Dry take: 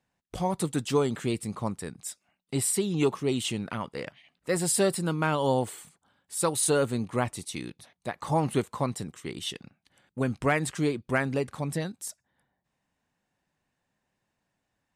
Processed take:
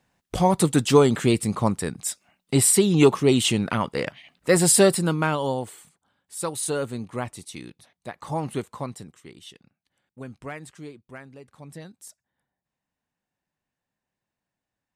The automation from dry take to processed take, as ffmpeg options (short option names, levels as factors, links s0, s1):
-af "volume=9.44,afade=t=out:st=4.68:d=0.88:silence=0.266073,afade=t=out:st=8.72:d=0.69:silence=0.398107,afade=t=out:st=10.36:d=1.02:silence=0.446684,afade=t=in:st=11.38:d=0.66:silence=0.298538"